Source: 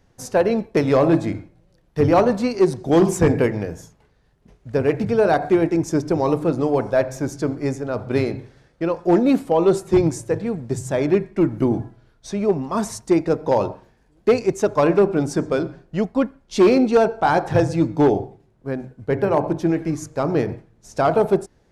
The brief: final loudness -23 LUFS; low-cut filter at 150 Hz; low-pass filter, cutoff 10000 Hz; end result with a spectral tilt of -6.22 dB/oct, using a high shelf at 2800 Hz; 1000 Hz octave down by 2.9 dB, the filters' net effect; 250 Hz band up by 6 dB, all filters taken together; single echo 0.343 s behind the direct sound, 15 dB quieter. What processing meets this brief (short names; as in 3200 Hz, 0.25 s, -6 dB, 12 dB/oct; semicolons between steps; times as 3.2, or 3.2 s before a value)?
HPF 150 Hz; LPF 10000 Hz; bell 250 Hz +9 dB; bell 1000 Hz -5.5 dB; high shelf 2800 Hz +4 dB; echo 0.343 s -15 dB; gain -6.5 dB